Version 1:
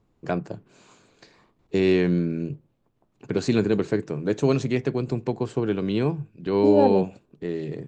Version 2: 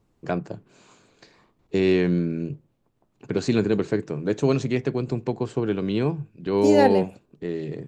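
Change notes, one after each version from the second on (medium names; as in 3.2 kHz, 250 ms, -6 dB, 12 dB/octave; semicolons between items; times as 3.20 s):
second voice: remove boxcar filter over 22 samples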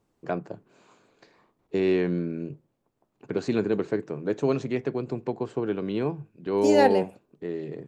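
first voice: add treble shelf 2.4 kHz -10.5 dB; master: add bass shelf 190 Hz -11.5 dB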